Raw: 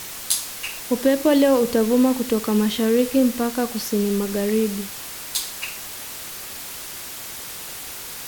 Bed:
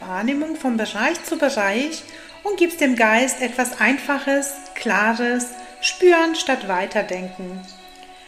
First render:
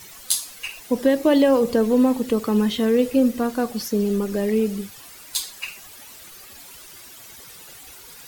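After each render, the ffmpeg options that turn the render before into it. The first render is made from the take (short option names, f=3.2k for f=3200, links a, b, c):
-af "afftdn=nr=12:nf=-35"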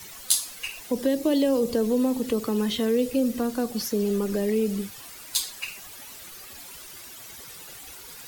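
-filter_complex "[0:a]acrossover=split=350|440|3200[a][b][c][d];[a]alimiter=limit=-24dB:level=0:latency=1[e];[c]acompressor=threshold=-34dB:ratio=6[f];[e][b][f][d]amix=inputs=4:normalize=0"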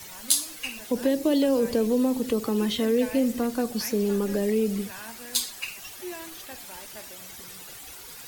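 -filter_complex "[1:a]volume=-25dB[a];[0:a][a]amix=inputs=2:normalize=0"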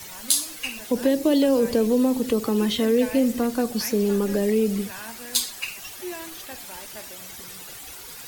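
-af "volume=3dB,alimiter=limit=-2dB:level=0:latency=1"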